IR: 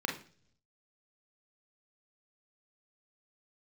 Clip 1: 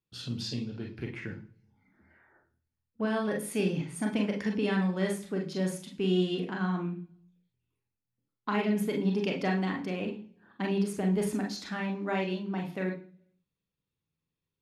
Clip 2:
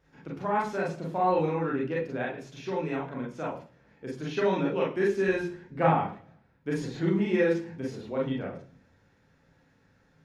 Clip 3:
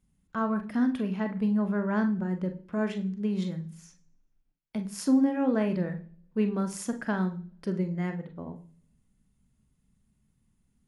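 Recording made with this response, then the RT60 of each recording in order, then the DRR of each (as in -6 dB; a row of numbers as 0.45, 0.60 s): 1; 0.50, 0.50, 0.50 s; 0.5, -5.0, 6.5 dB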